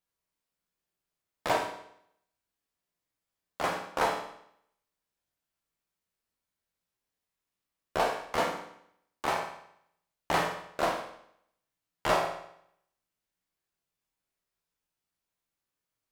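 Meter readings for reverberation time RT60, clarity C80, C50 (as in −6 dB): 0.70 s, 8.5 dB, 5.5 dB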